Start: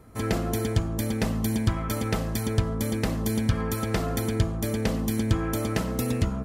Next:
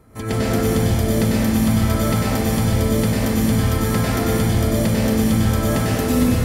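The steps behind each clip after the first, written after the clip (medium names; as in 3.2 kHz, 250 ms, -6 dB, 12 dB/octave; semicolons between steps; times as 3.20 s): plate-style reverb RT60 2.6 s, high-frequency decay 0.85×, pre-delay 85 ms, DRR -8 dB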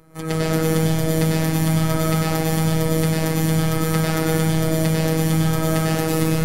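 robot voice 160 Hz; trim +2 dB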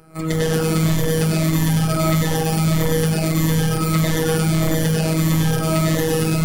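drifting ripple filter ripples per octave 1.1, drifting -1.6 Hz, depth 9 dB; in parallel at -4 dB: wavefolder -18.5 dBFS; on the sum: trim -1 dB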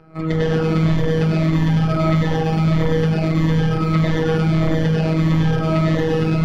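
distance through air 240 m; trim +1.5 dB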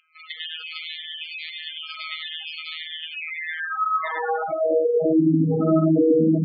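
high-pass sweep 2.9 kHz -> 260 Hz, 3.09–5.39 s; spectral gate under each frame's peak -10 dB strong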